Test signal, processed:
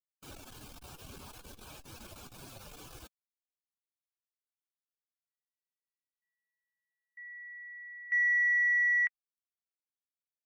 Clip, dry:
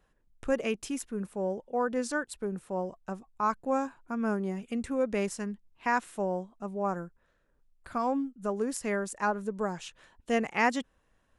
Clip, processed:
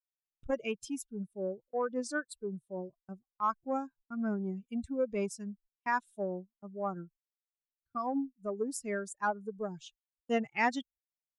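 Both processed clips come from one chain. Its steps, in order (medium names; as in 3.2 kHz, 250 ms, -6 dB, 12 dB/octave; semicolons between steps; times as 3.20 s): expander on every frequency bin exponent 2; gate -57 dBFS, range -24 dB; transformer saturation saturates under 440 Hz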